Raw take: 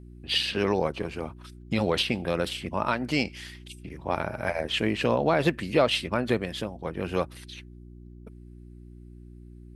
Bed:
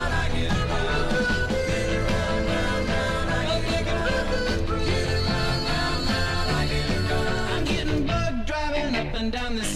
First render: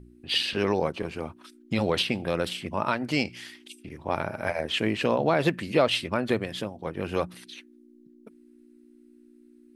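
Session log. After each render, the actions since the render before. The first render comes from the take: de-hum 60 Hz, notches 3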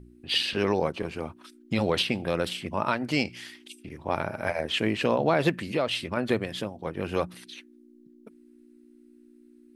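5.57–6.17 s: compression 1.5:1, threshold -30 dBFS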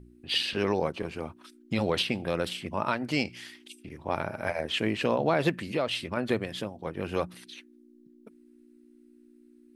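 trim -2 dB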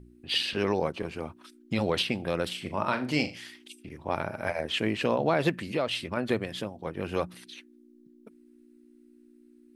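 2.57–3.39 s: flutter echo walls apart 6.8 m, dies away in 0.28 s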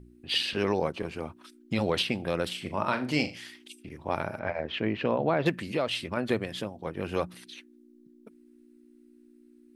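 4.39–5.46 s: distance through air 270 m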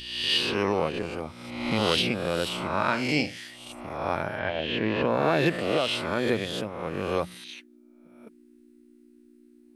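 reverse spectral sustain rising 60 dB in 1.03 s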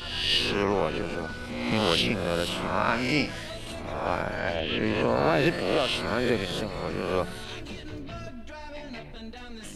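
add bed -14.5 dB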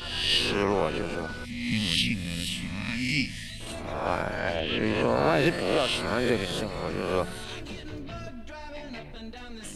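1.45–3.61 s: time-frequency box 280–1700 Hz -20 dB; dynamic bell 8.8 kHz, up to +5 dB, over -56 dBFS, Q 2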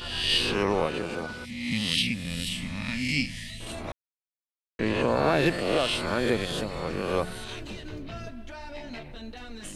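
0.86–2.25 s: high-pass 110 Hz 6 dB/octave; 3.92–4.79 s: mute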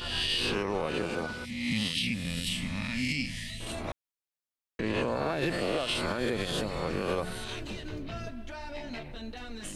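peak limiter -20 dBFS, peak gain reduction 10.5 dB

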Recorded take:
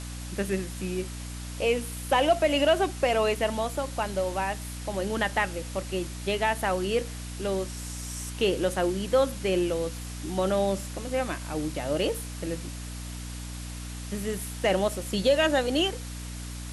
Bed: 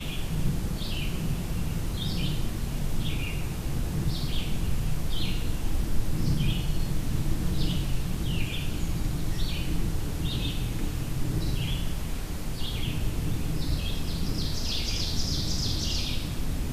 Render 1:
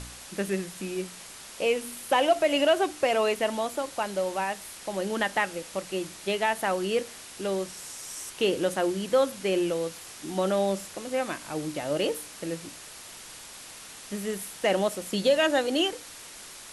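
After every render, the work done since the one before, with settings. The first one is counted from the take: de-hum 60 Hz, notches 5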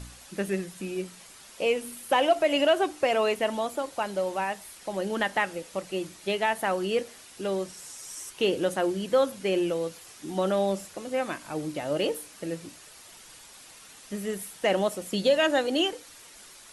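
noise reduction 7 dB, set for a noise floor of -45 dBFS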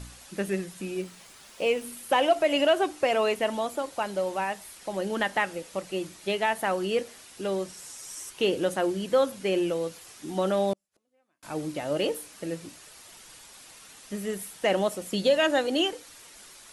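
1.01–1.84 s: median filter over 3 samples; 10.73–11.43 s: inverted gate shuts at -34 dBFS, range -42 dB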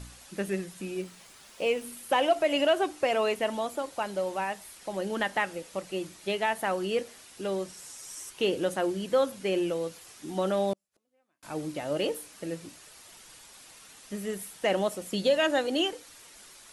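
trim -2 dB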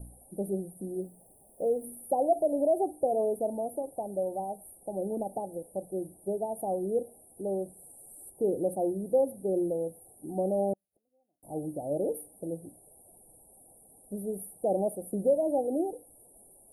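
Chebyshev band-stop 780–9200 Hz, order 5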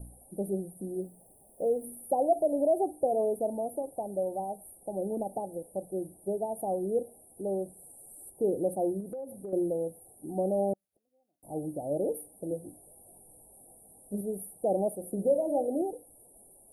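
9.00–9.53 s: compression 8:1, threshold -36 dBFS; 12.49–14.21 s: doubling 20 ms -3.5 dB; 14.94–15.82 s: de-hum 52.35 Hz, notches 14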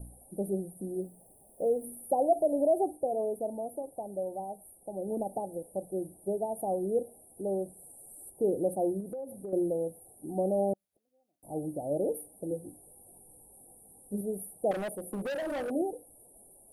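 2.97–5.08 s: gain -3.5 dB; 12.45–14.21 s: band-stop 640 Hz, Q 6.3; 14.71–15.71 s: hard clipper -32 dBFS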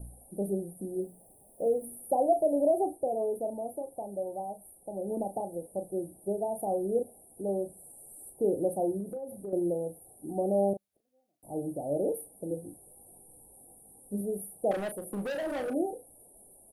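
doubling 35 ms -9 dB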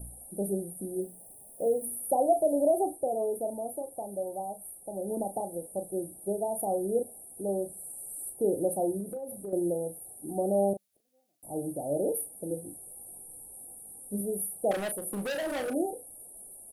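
treble shelf 2.3 kHz +9.5 dB

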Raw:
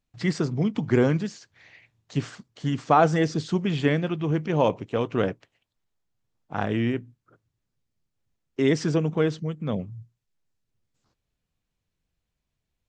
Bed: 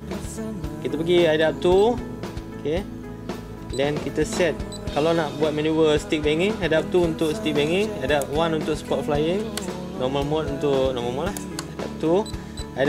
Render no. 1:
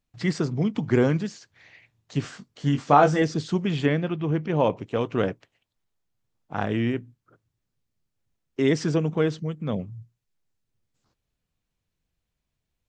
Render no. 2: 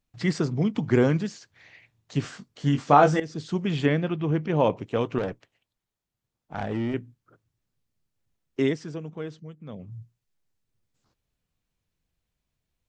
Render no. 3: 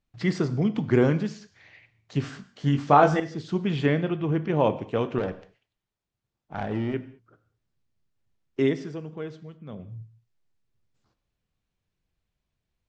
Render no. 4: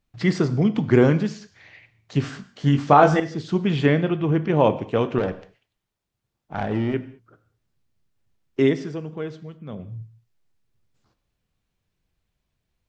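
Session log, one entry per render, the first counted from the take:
2.22–3.22 s: doubling 21 ms -5 dB; 3.86–4.77 s: distance through air 110 m
3.20–3.94 s: fade in equal-power, from -15.5 dB; 5.18–6.94 s: valve stage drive 22 dB, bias 0.45; 8.62–9.94 s: dip -12 dB, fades 0.15 s
distance through air 72 m; gated-style reverb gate 240 ms falling, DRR 11.5 dB
trim +4.5 dB; peak limiter -2 dBFS, peak gain reduction 2.5 dB

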